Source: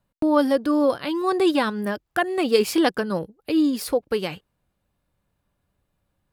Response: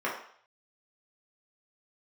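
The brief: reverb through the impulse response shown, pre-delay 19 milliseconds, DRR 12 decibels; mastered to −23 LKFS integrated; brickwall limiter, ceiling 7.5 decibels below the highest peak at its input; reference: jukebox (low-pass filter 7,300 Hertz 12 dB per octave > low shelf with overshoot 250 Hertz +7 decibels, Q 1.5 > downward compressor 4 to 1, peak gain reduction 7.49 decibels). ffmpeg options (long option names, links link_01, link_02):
-filter_complex "[0:a]alimiter=limit=-14dB:level=0:latency=1,asplit=2[link_01][link_02];[1:a]atrim=start_sample=2205,adelay=19[link_03];[link_02][link_03]afir=irnorm=-1:irlink=0,volume=-22dB[link_04];[link_01][link_04]amix=inputs=2:normalize=0,lowpass=7300,lowshelf=frequency=250:width_type=q:width=1.5:gain=7,acompressor=threshold=-25dB:ratio=4,volume=6dB"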